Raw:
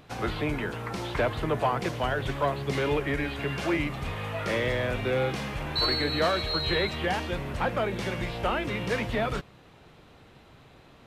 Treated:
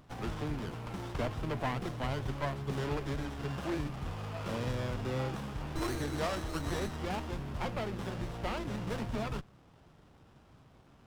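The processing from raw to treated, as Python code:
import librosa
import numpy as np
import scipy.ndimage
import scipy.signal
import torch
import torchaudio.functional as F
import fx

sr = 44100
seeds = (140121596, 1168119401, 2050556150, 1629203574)

y = fx.peak_eq(x, sr, hz=490.0, db=-6.5, octaves=1.1)
y = fx.running_max(y, sr, window=17)
y = F.gain(torch.from_numpy(y), -4.0).numpy()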